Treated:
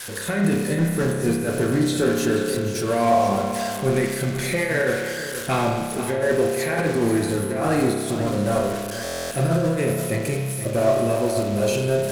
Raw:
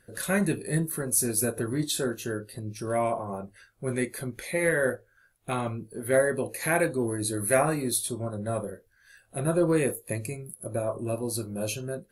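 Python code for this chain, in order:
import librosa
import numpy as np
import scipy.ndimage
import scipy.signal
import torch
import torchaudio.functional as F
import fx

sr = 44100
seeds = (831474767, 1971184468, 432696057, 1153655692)

y = x + 0.5 * 10.0 ** (-24.5 / 20.0) * np.diff(np.sign(x), prepend=np.sign(x[:1]))
y = fx.high_shelf(y, sr, hz=9600.0, db=4.5)
y = fx.over_compress(y, sr, threshold_db=-26.0, ratio=-0.5)
y = 10.0 ** (-21.0 / 20.0) * np.tanh(y / 10.0 ** (-21.0 / 20.0))
y = fx.air_absorb(y, sr, metres=68.0)
y = y + 10.0 ** (-11.0 / 20.0) * np.pad(y, (int(481 * sr / 1000.0), 0))[:len(y)]
y = fx.rev_spring(y, sr, rt60_s=1.5, pass_ms=(30,), chirp_ms=25, drr_db=1.0)
y = fx.buffer_glitch(y, sr, at_s=(9.03,), block=1024, repeats=11)
y = F.gain(torch.from_numpy(y), 7.5).numpy()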